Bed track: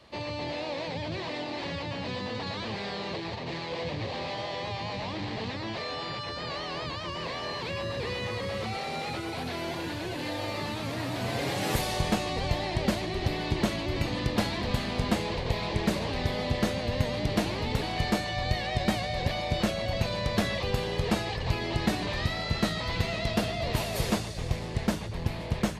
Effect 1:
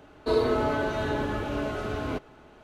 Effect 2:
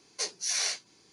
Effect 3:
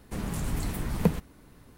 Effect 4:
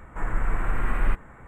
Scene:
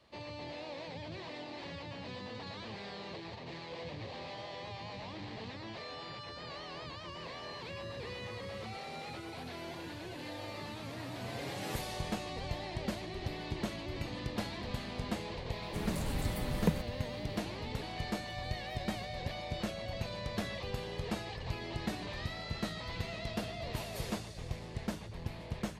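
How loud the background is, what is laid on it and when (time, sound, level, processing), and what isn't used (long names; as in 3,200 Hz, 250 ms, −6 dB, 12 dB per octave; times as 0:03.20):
bed track −10 dB
0:15.62: mix in 3 −6 dB
0:17.96: mix in 3 −12 dB + step-sequenced resonator 8.5 Hz 210–600 Hz
not used: 1, 2, 4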